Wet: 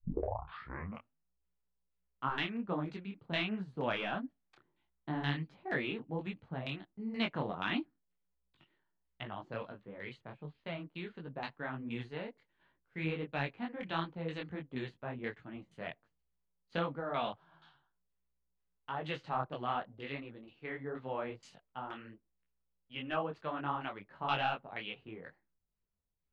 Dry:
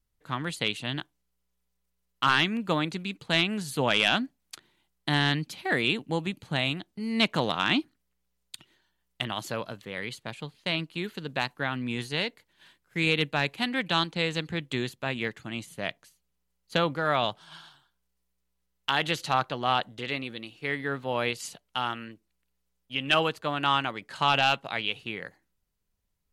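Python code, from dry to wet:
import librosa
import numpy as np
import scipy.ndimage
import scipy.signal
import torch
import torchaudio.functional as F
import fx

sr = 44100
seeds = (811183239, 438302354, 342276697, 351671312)

y = fx.tape_start_head(x, sr, length_s=1.31)
y = fx.filter_lfo_lowpass(y, sr, shape='saw_down', hz=2.1, low_hz=720.0, high_hz=3400.0, q=0.76)
y = fx.detune_double(y, sr, cents=49)
y = F.gain(torch.from_numpy(y), -5.0).numpy()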